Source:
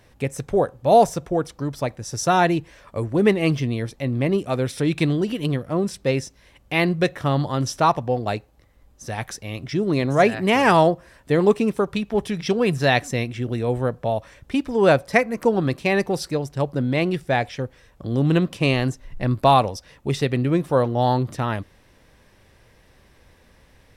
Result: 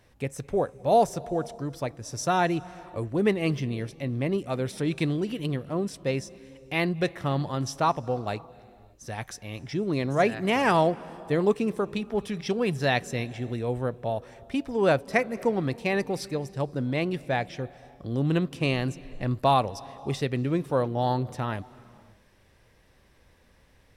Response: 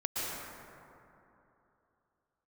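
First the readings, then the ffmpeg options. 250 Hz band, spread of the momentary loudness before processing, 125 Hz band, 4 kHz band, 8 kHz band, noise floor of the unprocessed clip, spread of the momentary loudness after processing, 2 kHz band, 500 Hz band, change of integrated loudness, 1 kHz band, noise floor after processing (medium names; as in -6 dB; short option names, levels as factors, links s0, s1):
-6.0 dB, 12 LU, -6.0 dB, -6.0 dB, -6.0 dB, -55 dBFS, 11 LU, -6.0 dB, -6.0 dB, -6.0 dB, -6.0 dB, -60 dBFS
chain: -filter_complex "[0:a]asplit=2[s0][s1];[1:a]atrim=start_sample=2205,afade=t=out:st=0.39:d=0.01,atrim=end_sample=17640,asetrate=24255,aresample=44100[s2];[s1][s2]afir=irnorm=-1:irlink=0,volume=0.0376[s3];[s0][s3]amix=inputs=2:normalize=0,volume=0.473"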